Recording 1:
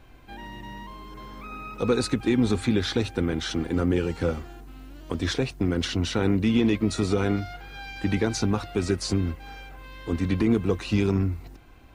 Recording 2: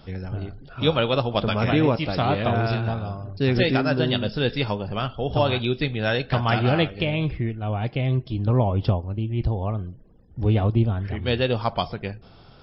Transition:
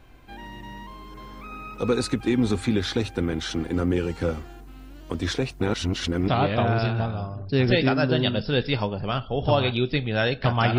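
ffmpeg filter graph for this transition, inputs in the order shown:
-filter_complex "[0:a]apad=whole_dur=10.78,atrim=end=10.78,asplit=2[s0][s1];[s0]atrim=end=5.612[s2];[s1]atrim=start=5.608:end=6.282,asetpts=PTS-STARTPTS,areverse[s3];[1:a]atrim=start=2.158:end=6.66[s4];[s2][s3]acrossfade=d=0.004:c1=hsin:c2=hsin[s5];[s5][s4]acrossfade=d=0.004:c1=hsin:c2=hsin"

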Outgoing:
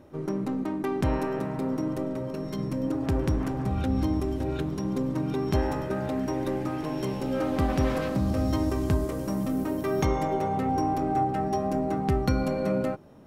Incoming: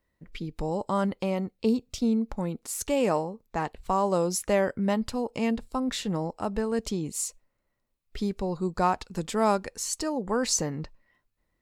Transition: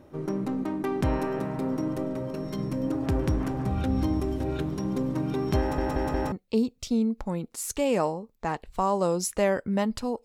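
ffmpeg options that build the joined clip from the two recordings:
-filter_complex "[0:a]apad=whole_dur=10.24,atrim=end=10.24,asplit=4[s0][s1][s2][s3];[s0]atrim=end=5.782[s4];[s1]atrim=start=5.598:end=5.782[s5];[s2]atrim=start=5.598:end=5.782[s6];[s3]atrim=start=5.598:end=5.782[s7];[1:a]atrim=start=1.428:end=5.35[s8];[s4][s5]acrossfade=d=0.004:c1=hsin:c2=hsin[s9];[s9][s6]acrossfade=d=0.004:c1=hsin:c2=hsin[s10];[s10][s7]acrossfade=d=0.004:c1=hsin:c2=hsin[s11];[s11][s8]acrossfade=d=0.004:c1=hsin:c2=hsin"

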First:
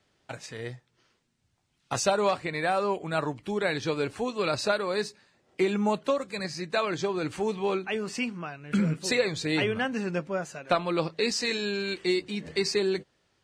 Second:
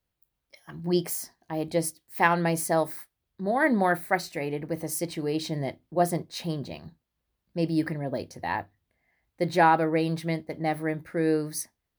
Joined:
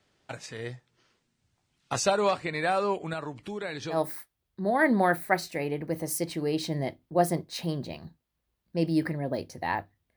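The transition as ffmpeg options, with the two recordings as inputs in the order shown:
-filter_complex "[0:a]asettb=1/sr,asplit=3[s0][s1][s2];[s0]atrim=end=3.134[s3];[s1]atrim=start=3.13:end=4.01,asetpts=PTS-STARTPTS,afade=t=in:d=0.004:c=qsin,afade=t=out:st=0.876:d=0.004:c=qsin,acompressor=threshold=0.0158:ratio=2:attack=3.2:release=140:knee=1:detection=peak[s4];[s2]atrim=start=4.006[s5];[s3][s4]acrossfade=d=0.004:c1=hsin:c2=qsin[s6];[s6][s5]acrossfade=d=0.004:c1=qsin:c2=hsin,apad=whole_dur=10.16,atrim=end=10.16,atrim=end=4.01,asetpts=PTS-STARTPTS[s7];[1:a]atrim=start=2.7:end=8.97,asetpts=PTS-STARTPTS[s8];[s7][s8]acrossfade=d=0.12:c1=tri:c2=tri"

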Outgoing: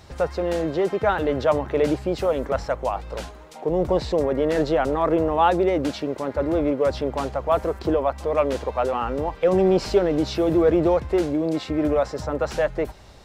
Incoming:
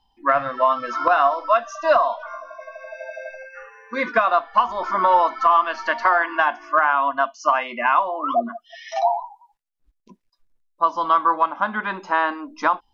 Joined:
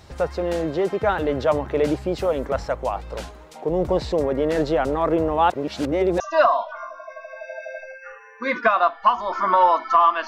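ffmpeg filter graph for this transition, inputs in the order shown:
-filter_complex "[0:a]apad=whole_dur=10.27,atrim=end=10.27,asplit=2[s0][s1];[s0]atrim=end=5.502[s2];[s1]atrim=start=5.498:end=6.202,asetpts=PTS-STARTPTS,areverse[s3];[1:a]atrim=start=1.708:end=5.78[s4];[s2][s3]acrossfade=d=0.004:c1=hsin:c2=hsin[s5];[s5][s4]acrossfade=d=0.004:c1=hsin:c2=hsin"

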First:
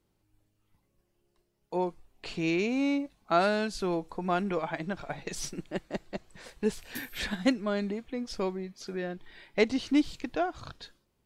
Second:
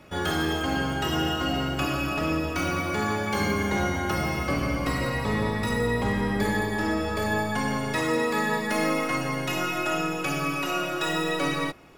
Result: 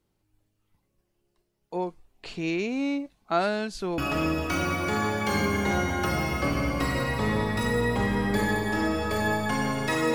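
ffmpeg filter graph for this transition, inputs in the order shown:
-filter_complex "[0:a]apad=whole_dur=10.14,atrim=end=10.14,atrim=end=3.982[s0];[1:a]atrim=start=2.038:end=8.2[s1];[s0][s1]acrossfade=d=0.004:c1=hsin:c2=hsin"

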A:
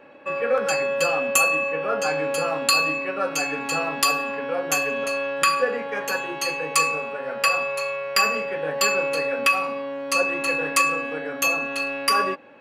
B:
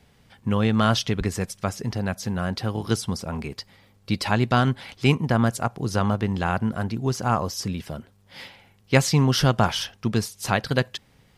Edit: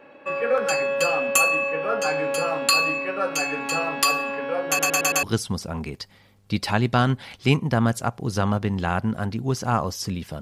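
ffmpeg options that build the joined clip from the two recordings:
-filter_complex "[0:a]apad=whole_dur=10.41,atrim=end=10.41,asplit=5[s0][s1][s2][s3][s4];[s0]atrim=end=4.792[s5];[s1]atrim=start=4.678:end=4.792[s6];[s2]atrim=start=4.678:end=4.792[s7];[s3]atrim=start=4.678:end=4.792[s8];[s4]atrim=start=4.678:end=4.792[s9];[1:a]atrim=start=2.808:end=7.99[s10];[s5][s6]acrossfade=d=0.004:c1=hsin:c2=hsin[s11];[s11][s7]acrossfade=d=0.004:c1=hsin:c2=hsin[s12];[s12][s8]acrossfade=d=0.004:c1=hsin:c2=hsin[s13];[s13][s9]acrossfade=d=0.004:c1=hsin:c2=hsin[s14];[s14][s10]acrossfade=d=0.004:c1=hsin:c2=hsin"

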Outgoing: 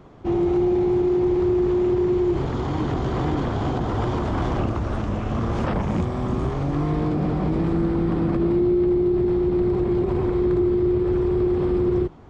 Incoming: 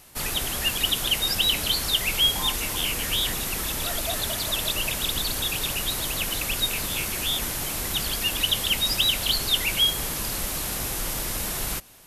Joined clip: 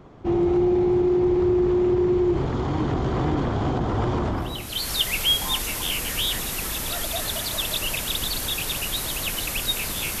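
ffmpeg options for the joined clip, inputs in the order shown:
-filter_complex "[0:a]apad=whole_dur=10.2,atrim=end=10.2,atrim=end=4.91,asetpts=PTS-STARTPTS[s0];[1:a]atrim=start=1.21:end=7.14,asetpts=PTS-STARTPTS[s1];[s0][s1]acrossfade=d=0.64:c1=qua:c2=qua"

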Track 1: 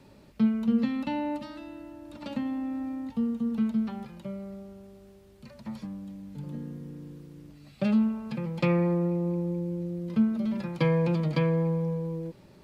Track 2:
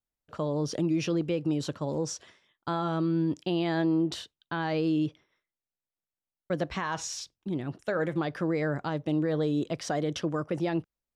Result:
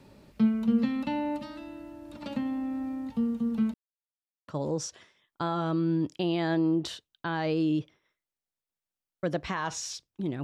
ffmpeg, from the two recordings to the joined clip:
-filter_complex "[0:a]apad=whole_dur=10.43,atrim=end=10.43,asplit=2[s0][s1];[s0]atrim=end=3.74,asetpts=PTS-STARTPTS,afade=t=out:st=3.736:d=0.004:c=hsin[s2];[s1]atrim=start=3.74:end=4.48,asetpts=PTS-STARTPTS,volume=0[s3];[1:a]atrim=start=1.75:end=7.7,asetpts=PTS-STARTPTS,afade=t=in:d=0.004:c=hsin[s4];[s2][s3][s4]concat=n=3:v=0:a=1"

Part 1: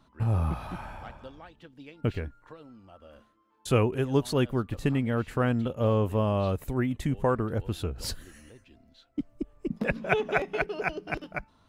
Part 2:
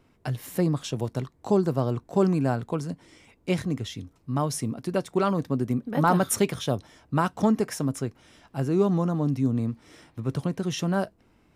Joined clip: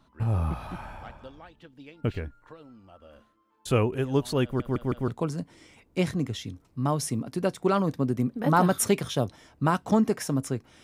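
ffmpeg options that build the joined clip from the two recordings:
-filter_complex "[0:a]apad=whole_dur=10.83,atrim=end=10.83,asplit=4[s0][s1][s2][s3];[s0]atrim=end=4.602[s4];[s1]atrim=start=4.438:end=4.602[s5];[s2]atrim=start=4.438:end=4.602[s6];[s3]atrim=start=4.438:end=4.602[s7];[1:a]atrim=start=2.588:end=8.34[s8];[s4][s5]acrossfade=d=0.004:c1=hsin:c2=hsin[s9];[s9][s6]acrossfade=d=0.004:c1=hsin:c2=hsin[s10];[s10][s7]acrossfade=d=0.004:c1=hsin:c2=hsin[s11];[s11][s8]acrossfade=d=0.004:c1=hsin:c2=hsin"

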